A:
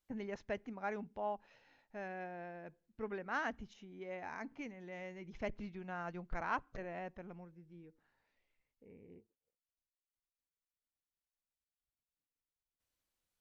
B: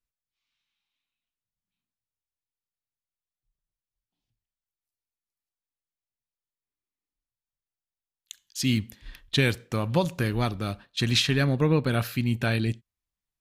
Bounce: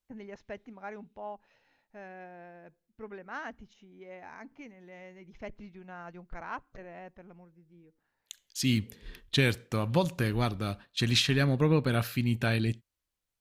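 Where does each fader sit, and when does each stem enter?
-1.5 dB, -2.5 dB; 0.00 s, 0.00 s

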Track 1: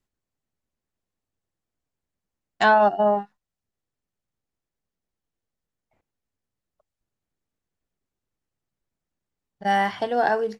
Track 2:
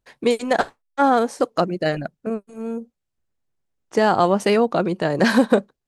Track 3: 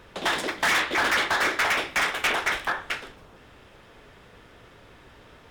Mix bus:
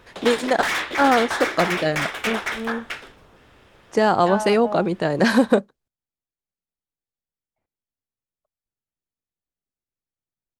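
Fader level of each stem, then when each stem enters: -10.5 dB, -0.5 dB, -1.5 dB; 1.65 s, 0.00 s, 0.00 s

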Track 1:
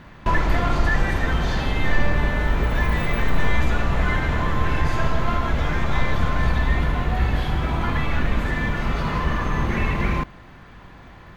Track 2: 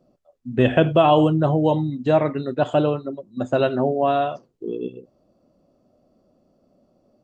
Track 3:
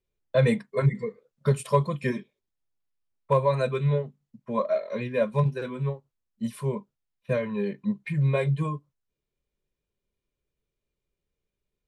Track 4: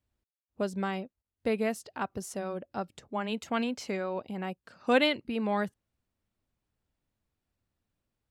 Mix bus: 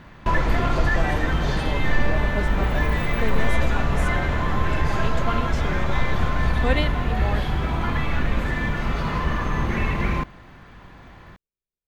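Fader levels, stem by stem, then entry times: -1.0 dB, -15.5 dB, -13.5 dB, -1.0 dB; 0.00 s, 0.00 s, 0.00 s, 1.75 s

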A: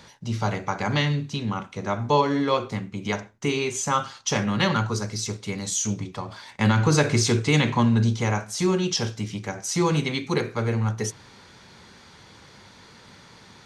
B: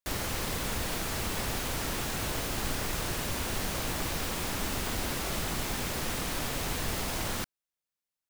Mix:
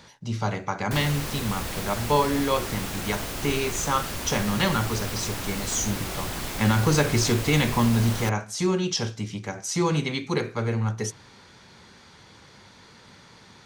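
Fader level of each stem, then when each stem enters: -1.5 dB, +0.5 dB; 0.00 s, 0.85 s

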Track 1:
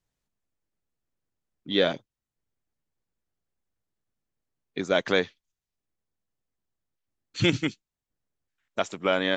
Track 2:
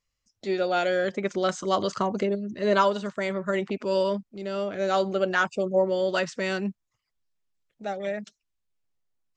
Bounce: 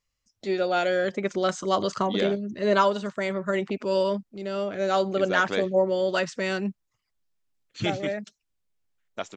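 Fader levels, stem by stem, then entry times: -6.0 dB, +0.5 dB; 0.40 s, 0.00 s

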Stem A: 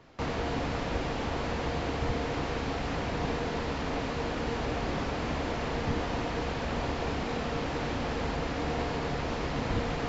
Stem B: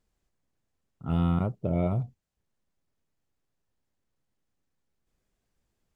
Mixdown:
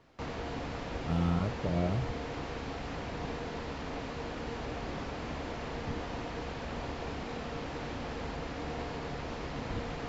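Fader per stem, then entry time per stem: -6.5 dB, -4.5 dB; 0.00 s, 0.00 s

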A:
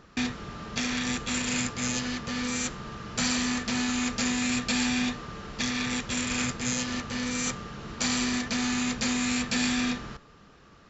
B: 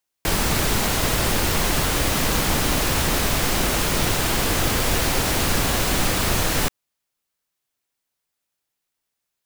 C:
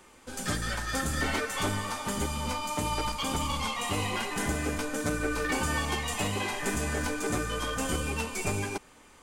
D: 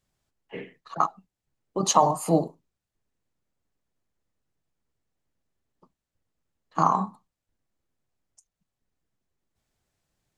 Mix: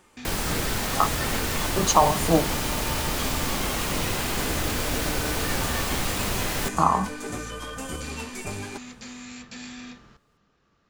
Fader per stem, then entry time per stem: -13.0 dB, -6.5 dB, -3.5 dB, +1.0 dB; 0.00 s, 0.00 s, 0.00 s, 0.00 s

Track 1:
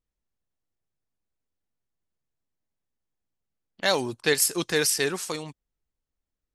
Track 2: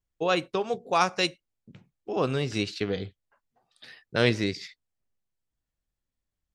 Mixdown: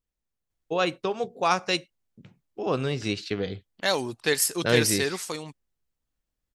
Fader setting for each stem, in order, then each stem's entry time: -1.5 dB, 0.0 dB; 0.00 s, 0.50 s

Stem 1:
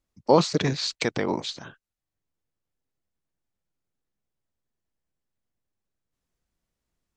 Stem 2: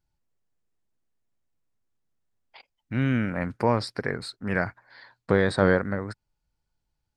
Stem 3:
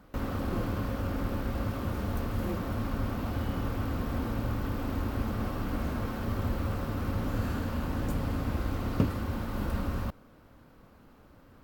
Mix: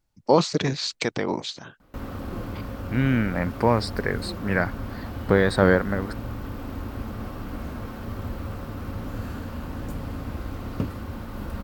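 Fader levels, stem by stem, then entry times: 0.0 dB, +2.5 dB, -1.5 dB; 0.00 s, 0.00 s, 1.80 s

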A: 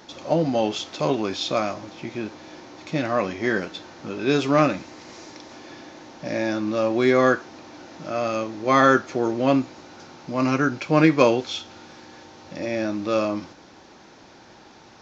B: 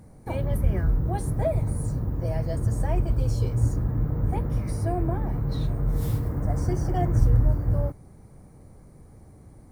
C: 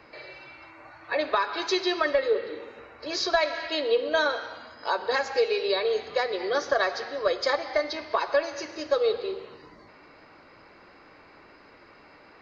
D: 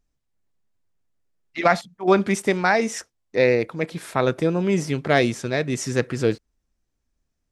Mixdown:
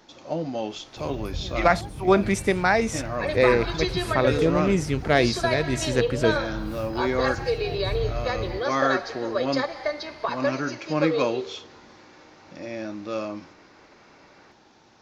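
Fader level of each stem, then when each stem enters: -7.5 dB, -10.0 dB, -2.0 dB, -1.5 dB; 0.00 s, 0.70 s, 2.10 s, 0.00 s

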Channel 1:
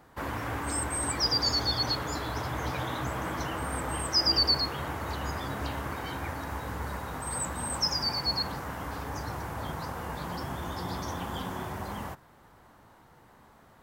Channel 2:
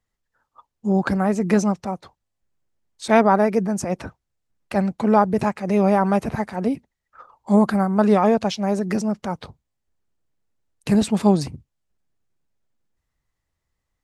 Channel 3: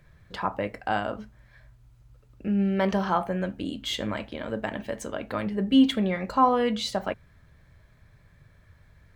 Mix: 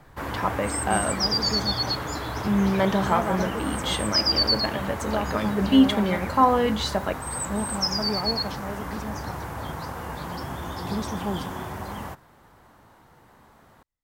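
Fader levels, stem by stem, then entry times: +2.5 dB, -13.5 dB, +2.0 dB; 0.00 s, 0.00 s, 0.00 s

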